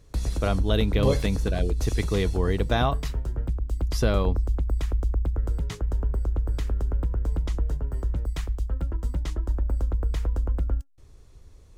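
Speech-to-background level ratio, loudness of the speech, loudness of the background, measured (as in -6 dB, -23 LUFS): 2.0 dB, -27.0 LUFS, -29.0 LUFS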